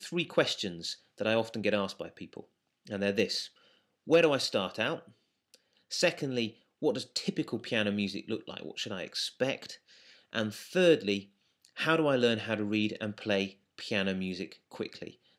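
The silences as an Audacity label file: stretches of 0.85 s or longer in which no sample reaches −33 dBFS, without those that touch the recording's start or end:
4.960000	5.930000	silence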